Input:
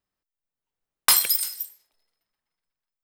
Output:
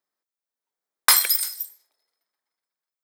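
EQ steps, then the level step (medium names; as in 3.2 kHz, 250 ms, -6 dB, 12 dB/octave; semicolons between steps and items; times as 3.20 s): high-pass 340 Hz 12 dB/octave; peaking EQ 2.8 kHz -9.5 dB 0.28 oct; dynamic bell 1.9 kHz, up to +6 dB, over -39 dBFS, Q 0.88; +1.0 dB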